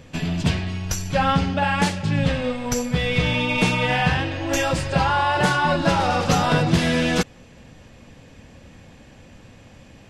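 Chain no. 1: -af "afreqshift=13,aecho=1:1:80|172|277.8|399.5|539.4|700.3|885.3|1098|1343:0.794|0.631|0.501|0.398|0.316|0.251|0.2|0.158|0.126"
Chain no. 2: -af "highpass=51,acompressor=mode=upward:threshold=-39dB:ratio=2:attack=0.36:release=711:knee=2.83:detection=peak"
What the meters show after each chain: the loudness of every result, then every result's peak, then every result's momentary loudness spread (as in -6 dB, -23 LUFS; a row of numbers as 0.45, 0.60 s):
-17.0, -21.0 LUFS; -1.5, -5.0 dBFS; 10, 6 LU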